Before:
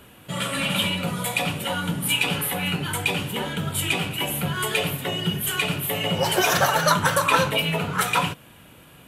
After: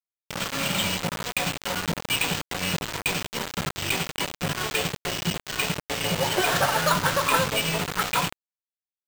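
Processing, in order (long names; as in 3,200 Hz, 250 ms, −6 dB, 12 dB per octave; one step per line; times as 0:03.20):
bad sample-rate conversion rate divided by 4×, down filtered, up hold
bit reduction 4 bits
level −3 dB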